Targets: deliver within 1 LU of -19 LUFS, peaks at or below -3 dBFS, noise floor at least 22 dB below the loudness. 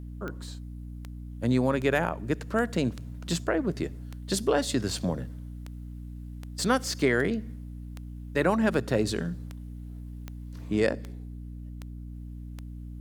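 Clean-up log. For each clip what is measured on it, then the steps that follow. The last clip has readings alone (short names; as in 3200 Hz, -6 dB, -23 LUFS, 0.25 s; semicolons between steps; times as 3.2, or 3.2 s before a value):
clicks 17; hum 60 Hz; harmonics up to 300 Hz; hum level -37 dBFS; loudness -28.5 LUFS; peak -10.0 dBFS; loudness target -19.0 LUFS
-> de-click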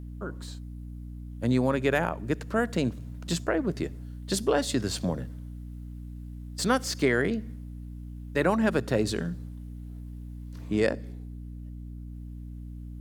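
clicks 0; hum 60 Hz; harmonics up to 300 Hz; hum level -37 dBFS
-> de-hum 60 Hz, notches 5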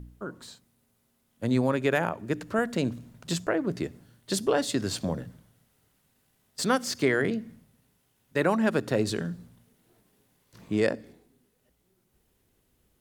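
hum none; loudness -28.5 LUFS; peak -10.5 dBFS; loudness target -19.0 LUFS
-> gain +9.5 dB; limiter -3 dBFS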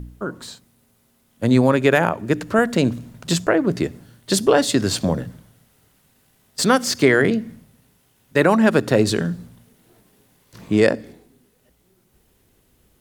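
loudness -19.0 LUFS; peak -3.0 dBFS; noise floor -62 dBFS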